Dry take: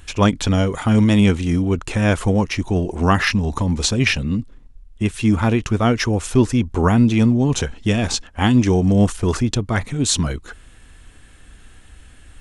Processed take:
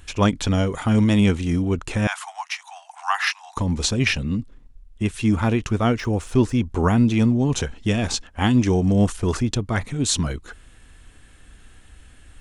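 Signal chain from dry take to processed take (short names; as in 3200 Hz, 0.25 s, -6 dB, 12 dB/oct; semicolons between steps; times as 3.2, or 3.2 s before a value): 2.07–3.57 steep high-pass 730 Hz 96 dB/oct; 5.91–6.67 de-esser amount 65%; gain -3 dB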